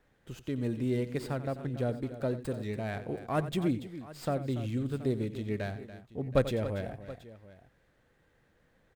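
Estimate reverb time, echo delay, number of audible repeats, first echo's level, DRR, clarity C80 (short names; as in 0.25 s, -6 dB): none, 90 ms, 3, -14.0 dB, none, none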